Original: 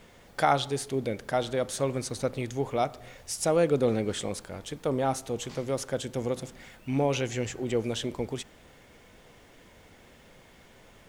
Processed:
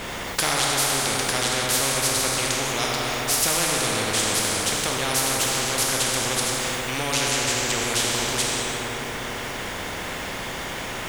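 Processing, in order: 5.28–5.75 hard clip -30 dBFS, distortion -22 dB; plate-style reverb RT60 2.7 s, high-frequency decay 0.5×, DRR -2.5 dB; spectral compressor 4:1; gain +4.5 dB

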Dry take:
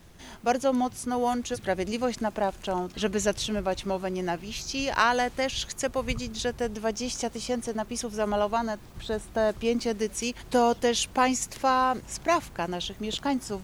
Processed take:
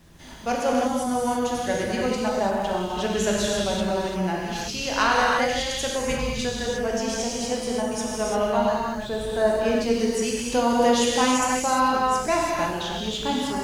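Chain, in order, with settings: non-linear reverb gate 0.37 s flat, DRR -4.5 dB; gain -1.5 dB

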